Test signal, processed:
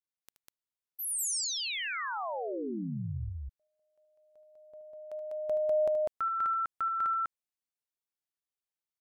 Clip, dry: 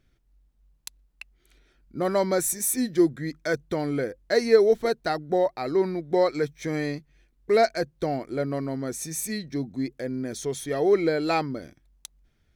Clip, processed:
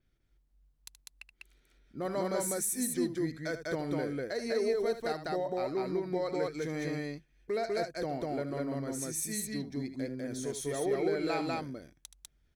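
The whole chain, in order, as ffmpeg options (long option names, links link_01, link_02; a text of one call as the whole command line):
ffmpeg -i in.wav -af "adynamicequalizer=threshold=0.00447:dfrequency=8900:dqfactor=1.3:tfrequency=8900:tqfactor=1.3:attack=5:release=100:ratio=0.375:range=2.5:mode=boostabove:tftype=bell,alimiter=limit=-16.5dB:level=0:latency=1:release=114,aecho=1:1:75.8|198.3:0.282|0.891,volume=-8.5dB" out.wav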